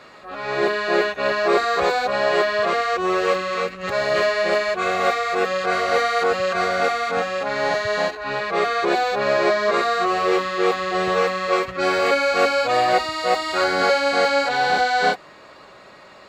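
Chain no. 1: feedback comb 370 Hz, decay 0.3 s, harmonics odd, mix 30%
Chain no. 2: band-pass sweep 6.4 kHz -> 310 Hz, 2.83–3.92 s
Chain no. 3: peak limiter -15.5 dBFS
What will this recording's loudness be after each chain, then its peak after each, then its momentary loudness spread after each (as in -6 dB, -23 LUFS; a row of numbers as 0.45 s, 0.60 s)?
-23.0 LUFS, -31.5 LUFS, -24.0 LUFS; -7.5 dBFS, -15.0 dBFS, -15.5 dBFS; 5 LU, 11 LU, 3 LU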